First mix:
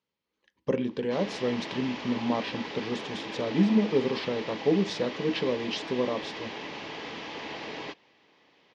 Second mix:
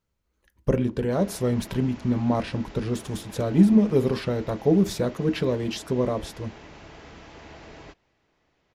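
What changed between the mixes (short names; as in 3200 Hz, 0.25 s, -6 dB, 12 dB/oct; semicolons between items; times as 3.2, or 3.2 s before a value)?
background -10.5 dB; master: remove speaker cabinet 270–5300 Hz, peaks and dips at 360 Hz -4 dB, 660 Hz -7 dB, 1400 Hz -8 dB, 3200 Hz +3 dB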